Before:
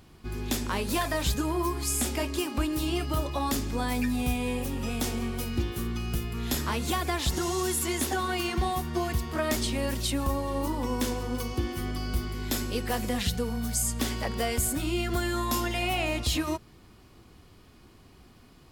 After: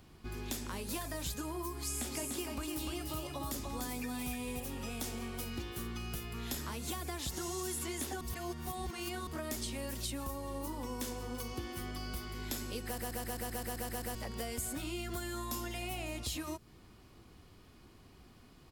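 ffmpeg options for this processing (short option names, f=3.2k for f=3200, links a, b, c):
-filter_complex "[0:a]asplit=3[a][b][c];[a]afade=t=out:st=2.09:d=0.02[d];[b]aecho=1:1:295:0.596,afade=t=in:st=2.09:d=0.02,afade=t=out:st=4.59:d=0.02[e];[c]afade=t=in:st=4.59:d=0.02[f];[d][e][f]amix=inputs=3:normalize=0,asplit=13[g][h][i][j][k][l][m][n][o][p][q][r][s];[g]atrim=end=8.212[t];[h]atrim=start=8.208:end=9.272,asetpts=PTS-STARTPTS,areverse[u];[i]atrim=start=9.268:end=12.982[v];[j]atrim=start=12.848:end=12.982[w];[k]atrim=start=12.848:end=12.982[x];[l]atrim=start=12.848:end=12.982[y];[m]atrim=start=12.848:end=12.982[z];[n]atrim=start=12.848:end=12.982[aa];[o]atrim=start=12.848:end=12.982[ab];[p]atrim=start=12.848:end=12.982[ac];[q]atrim=start=12.848:end=12.982[ad];[r]atrim=start=12.848:end=12.982[ae];[s]atrim=start=14.148[af];[t][u]acrossfade=d=0.004:c1=hsin:c2=hsin[ag];[ag][v]acrossfade=d=0.004:c1=hsin:c2=hsin[ah];[ah][w]acrossfade=d=0.004:c1=hsin:c2=hsin[ai];[ai][x]acrossfade=d=0.004:c1=hsin:c2=hsin[aj];[aj][y]acrossfade=d=0.004:c1=hsin:c2=hsin[ak];[ak][z]acrossfade=d=0.004:c1=hsin:c2=hsin[al];[al][aa]acrossfade=d=0.004:c1=hsin:c2=hsin[am];[am][ab]acrossfade=d=0.004:c1=hsin:c2=hsin[an];[an][ac]acrossfade=d=0.004:c1=hsin:c2=hsin[ao];[ao][ad]acrossfade=d=0.004:c1=hsin:c2=hsin[ap];[ap][ae]acrossfade=d=0.004:c1=hsin:c2=hsin[aq];[aq][af]acrossfade=d=0.004:c1=hsin:c2=hsin,acrossover=split=430|5800[ar][as][at];[ar]acompressor=threshold=-37dB:ratio=4[au];[as]acompressor=threshold=-40dB:ratio=4[av];[at]acompressor=threshold=-36dB:ratio=4[aw];[au][av][aw]amix=inputs=3:normalize=0,volume=-4dB"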